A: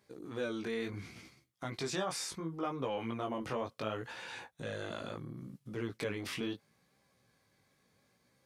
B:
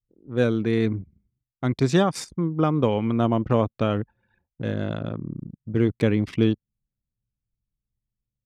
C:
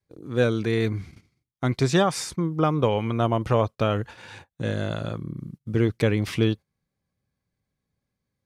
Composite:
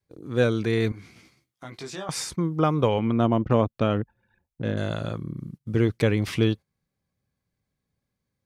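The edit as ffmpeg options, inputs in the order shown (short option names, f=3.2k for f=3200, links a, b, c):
-filter_complex "[2:a]asplit=3[a][b][c];[a]atrim=end=0.922[d];[0:a]atrim=start=0.918:end=2.092[e];[b]atrim=start=2.088:end=2.992[f];[1:a]atrim=start=2.988:end=4.772[g];[c]atrim=start=4.768[h];[d][e]acrossfade=d=0.004:c1=hsin:c2=hsin[i];[i][f]acrossfade=d=0.004:c1=hsin:c2=hsin[j];[j][g]acrossfade=d=0.004:c1=hsin:c2=hsin[k];[k][h]acrossfade=d=0.004:c1=hsin:c2=hsin"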